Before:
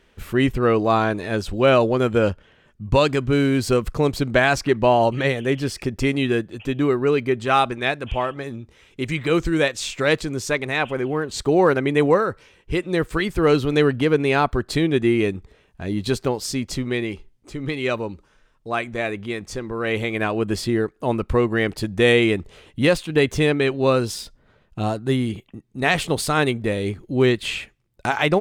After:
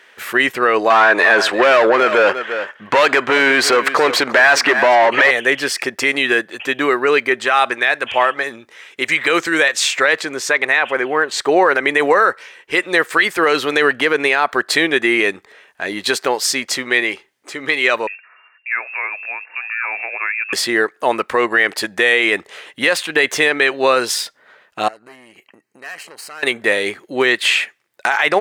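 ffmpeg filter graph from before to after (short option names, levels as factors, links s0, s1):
-filter_complex "[0:a]asettb=1/sr,asplit=3[s0][s1][s2];[s0]atrim=end=0.904[s3];[s1]atrim=start=0.9:end=5.31,asetpts=PTS-STARTPTS,afade=t=in:d=0.004:c=qsin,afade=t=out:st=4.406:d=0.004:c=qsin,asplit=2[s4][s5];[s5]highpass=f=720:p=1,volume=11.2,asoftclip=type=tanh:threshold=0.562[s6];[s4][s6]amix=inputs=2:normalize=0,lowpass=f=1600:p=1,volume=0.501,aecho=1:1:347:0.15,atrim=end_sample=194481[s7];[s2]atrim=start=5.306[s8];[s3][s7]acrossfade=d=0.004:c1=hsin:c2=qsin[s9];[s9][s8]acrossfade=d=0.004:c1=qsin:c2=hsin,asettb=1/sr,asplit=3[s10][s11][s12];[s10]atrim=end=9.984[s13];[s11]atrim=start=9.98:end=11.74,asetpts=PTS-STARTPTS,afade=t=in:d=0.004:c=qsin,afade=t=out:st=1.756:d=0.004:c=qsin,highshelf=f=4200:g=-6.5,acompressor=mode=upward:threshold=0.0316:ratio=2.5:attack=3.2:release=140:knee=2.83:detection=peak[s14];[s12]atrim=start=11.736[s15];[s13][s14]acrossfade=d=0.004:c1=hsin:c2=qsin[s16];[s16][s15]acrossfade=d=0.004:c1=qsin:c2=hsin,asettb=1/sr,asplit=3[s17][s18][s19];[s17]atrim=end=18.074[s20];[s18]atrim=start=18.07:end=20.53,asetpts=PTS-STARTPTS,afade=t=in:d=0.004:c=qsin,afade=t=out:st=2.456:d=0.004:c=qsin,lowshelf=f=420:g=-9,acompressor=threshold=0.01:ratio=2:attack=3.2:release=140:knee=1:detection=peak,lowpass=f=2400:t=q:w=0.5098,lowpass=f=2400:t=q:w=0.6013,lowpass=f=2400:t=q:w=0.9,lowpass=f=2400:t=q:w=2.563,afreqshift=-2800[s21];[s19]atrim=start=20.526[s22];[s20][s21]acrossfade=d=0.004:c1=hsin:c2=qsin[s23];[s23][s22]acrossfade=d=0.004:c1=qsin:c2=hsin,asettb=1/sr,asplit=3[s24][s25][s26];[s24]atrim=end=24.884[s27];[s25]atrim=start=24.88:end=26.43,asetpts=PTS-STARTPTS,afade=t=in:d=0.004:c=qsin,afade=t=out:st=1.546:d=0.004:c=qsin,aeval=exprs='(tanh(11.2*val(0)+0.7)-tanh(0.7))/11.2':c=same,acompressor=threshold=0.01:ratio=8:attack=3.2:release=140:knee=1:detection=peak,asuperstop=centerf=3500:order=4:qfactor=4.9[s28];[s26]atrim=start=26.426[s29];[s27][s28]acrossfade=d=0.004:c1=hsin:c2=qsin[s30];[s30][s29]acrossfade=d=0.004:c1=qsin:c2=hsin,highpass=590,equalizer=f=1800:w=2.3:g=7.5,alimiter=level_in=4.47:limit=0.891:release=50:level=0:latency=1,volume=0.794"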